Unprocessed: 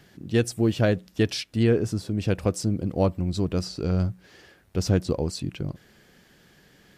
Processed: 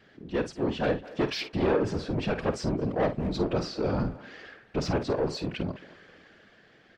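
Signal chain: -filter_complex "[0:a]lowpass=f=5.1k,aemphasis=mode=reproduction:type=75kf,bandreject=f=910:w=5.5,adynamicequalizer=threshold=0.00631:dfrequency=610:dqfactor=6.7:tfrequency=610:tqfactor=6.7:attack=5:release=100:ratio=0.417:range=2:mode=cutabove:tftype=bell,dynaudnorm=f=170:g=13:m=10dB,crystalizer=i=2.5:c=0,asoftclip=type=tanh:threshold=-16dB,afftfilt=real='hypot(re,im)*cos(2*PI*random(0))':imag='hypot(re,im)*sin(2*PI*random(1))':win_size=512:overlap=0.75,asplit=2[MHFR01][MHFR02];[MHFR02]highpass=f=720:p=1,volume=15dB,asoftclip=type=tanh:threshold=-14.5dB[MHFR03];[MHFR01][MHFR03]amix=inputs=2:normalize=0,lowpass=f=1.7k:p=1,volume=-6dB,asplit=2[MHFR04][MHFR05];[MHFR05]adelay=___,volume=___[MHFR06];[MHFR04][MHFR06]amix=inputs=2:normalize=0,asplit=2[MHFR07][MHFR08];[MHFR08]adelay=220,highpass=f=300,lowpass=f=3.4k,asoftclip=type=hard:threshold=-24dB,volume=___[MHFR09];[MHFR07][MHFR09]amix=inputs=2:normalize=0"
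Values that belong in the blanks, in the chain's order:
50, -11dB, -16dB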